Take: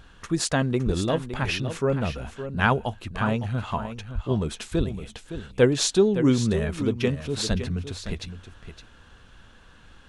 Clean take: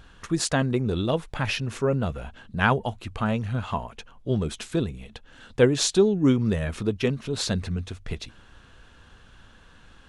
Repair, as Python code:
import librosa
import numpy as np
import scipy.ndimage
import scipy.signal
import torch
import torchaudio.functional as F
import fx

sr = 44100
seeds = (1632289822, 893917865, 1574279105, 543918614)

y = fx.fix_deplosive(x, sr, at_s=(0.85, 4.14, 4.77, 7.49))
y = fx.fix_echo_inverse(y, sr, delay_ms=563, level_db=-10.5)